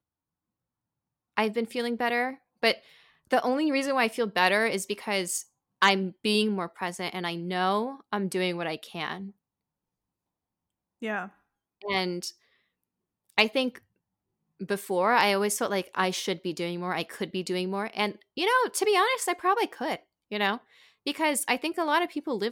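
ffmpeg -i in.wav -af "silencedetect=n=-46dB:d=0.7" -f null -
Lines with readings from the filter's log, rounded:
silence_start: 0.00
silence_end: 1.37 | silence_duration: 1.37
silence_start: 9.31
silence_end: 11.02 | silence_duration: 1.71
silence_start: 12.32
silence_end: 13.30 | silence_duration: 0.98
silence_start: 13.78
silence_end: 14.60 | silence_duration: 0.82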